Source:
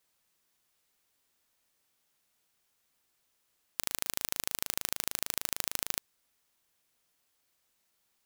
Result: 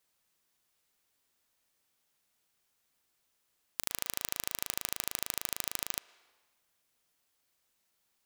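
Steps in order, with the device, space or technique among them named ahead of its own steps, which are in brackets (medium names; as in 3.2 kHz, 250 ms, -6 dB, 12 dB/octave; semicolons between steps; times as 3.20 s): filtered reverb send (on a send: high-pass 430 Hz 12 dB/octave + low-pass 4.4 kHz 12 dB/octave + reverberation RT60 1.4 s, pre-delay 103 ms, DRR 18.5 dB); on the sum: trim -1.5 dB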